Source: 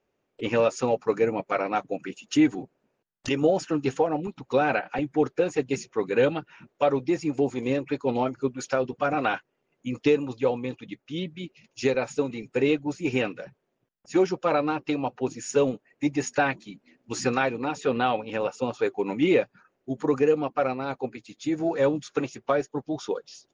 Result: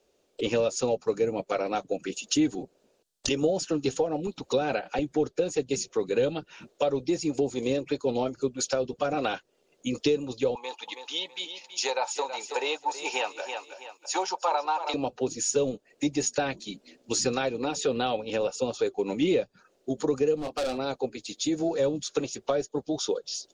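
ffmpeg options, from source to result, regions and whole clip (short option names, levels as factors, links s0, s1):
-filter_complex "[0:a]asettb=1/sr,asplit=3[s0][s1][s2];[s0]atrim=end=10.554[s3];[s1]atrim=start=10.55:end=14.94,asetpts=PTS-STARTPTS,afade=t=in:d=0.004:c=qsin,afade=t=out:st=4.386:d=0.004:c=qsin,highpass=f=890:t=q:w=8.7,aecho=1:1:325|650|975:0.224|0.0716|0.0229,atrim=end_sample=193599[s4];[s2]atrim=start=14.936[s5];[s3][s4]acrossfade=d=0.004:c1=hsin:c2=qsin[s6];[s6][s5]acrossfade=d=0.004:c1=qsin:c2=hsin,asettb=1/sr,asplit=3[s7][s8][s9];[s7]atrim=end=20.364[s10];[s8]atrim=start=20.36:end=20.78,asetpts=PTS-STARTPTS,afade=t=in:d=0.004:c=qsin,afade=t=out:st=0.416:d=0.004:c=qsin,asplit=2[s11][s12];[s12]adelay=27,volume=0.376[s13];[s11][s13]amix=inputs=2:normalize=0,atrim=end_sample=18522,asoftclip=type=hard:threshold=0.0447[s14];[s9]atrim=start=20.776[s15];[s10][s14]acrossfade=d=0.004:c1=hsin:c2=qsin[s16];[s16][s15]acrossfade=d=0.004:c1=qsin:c2=hsin,equalizer=f=125:t=o:w=1:g=-10,equalizer=f=250:t=o:w=1:g=-3,equalizer=f=500:t=o:w=1:g=4,equalizer=f=1000:t=o:w=1:g=-5,equalizer=f=2000:t=o:w=1:g=-7,equalizer=f=4000:t=o:w=1:g=7,equalizer=f=8000:t=o:w=1:g=8,acrossover=split=180[s17][s18];[s18]acompressor=threshold=0.0141:ratio=2.5[s19];[s17][s19]amix=inputs=2:normalize=0,volume=2.37"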